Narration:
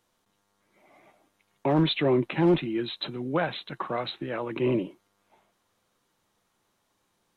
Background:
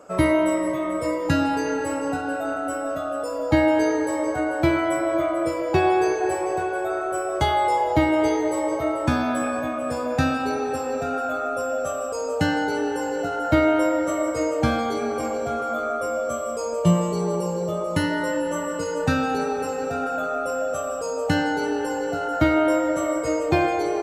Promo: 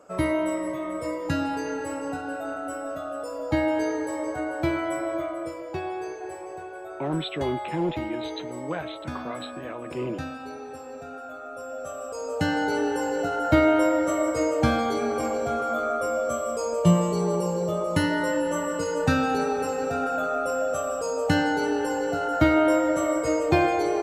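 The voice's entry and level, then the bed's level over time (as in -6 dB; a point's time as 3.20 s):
5.35 s, -5.5 dB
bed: 5.06 s -5.5 dB
5.85 s -13 dB
11.41 s -13 dB
12.73 s -0.5 dB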